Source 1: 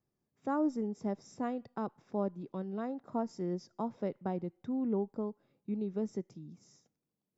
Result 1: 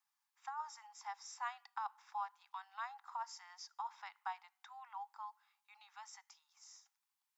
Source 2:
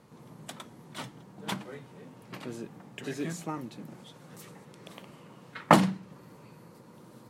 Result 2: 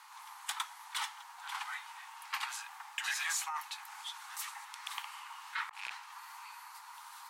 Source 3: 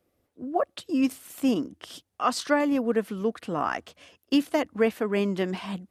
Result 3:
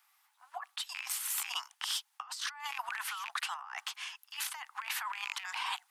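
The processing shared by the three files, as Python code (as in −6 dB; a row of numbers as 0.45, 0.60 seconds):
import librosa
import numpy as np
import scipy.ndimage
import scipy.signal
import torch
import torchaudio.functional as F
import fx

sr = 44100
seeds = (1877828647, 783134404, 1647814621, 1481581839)

y = fx.rattle_buzz(x, sr, strikes_db=-28.0, level_db=-18.0)
y = scipy.signal.sosfilt(scipy.signal.butter(16, 810.0, 'highpass', fs=sr, output='sos'), y)
y = fx.over_compress(y, sr, threshold_db=-43.0, ratio=-1.0)
y = 10.0 ** (-26.0 / 20.0) * np.tanh(y / 10.0 ** (-26.0 / 20.0))
y = y * 10.0 ** (3.5 / 20.0)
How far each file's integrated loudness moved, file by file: −10.5, −9.5, −10.0 LU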